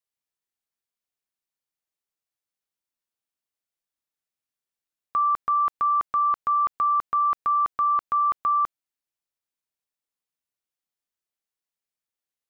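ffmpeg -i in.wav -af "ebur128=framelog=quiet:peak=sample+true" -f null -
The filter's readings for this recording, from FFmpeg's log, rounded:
Integrated loudness:
  I:         -23.1 LUFS
  Threshold: -33.1 LUFS
Loudness range:
  LRA:         9.2 LU
  Threshold: -45.3 LUFS
  LRA low:   -32.0 LUFS
  LRA high:  -22.8 LUFS
Sample peak:
  Peak:      -18.1 dBFS
True peak:
  Peak:      -18.1 dBFS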